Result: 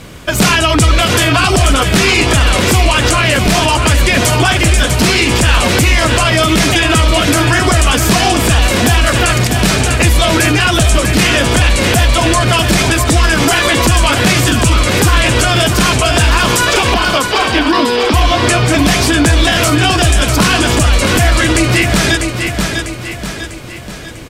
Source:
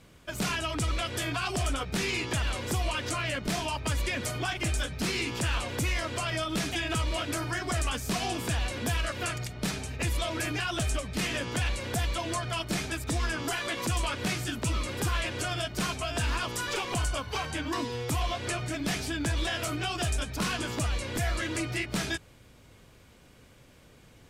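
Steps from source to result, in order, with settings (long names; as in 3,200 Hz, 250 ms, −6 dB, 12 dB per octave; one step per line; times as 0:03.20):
0:16.94–0:18.14: Chebyshev band-pass filter 200–5,200 Hz, order 5
repeating echo 647 ms, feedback 48%, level −9 dB
boost into a limiter +24 dB
level −1 dB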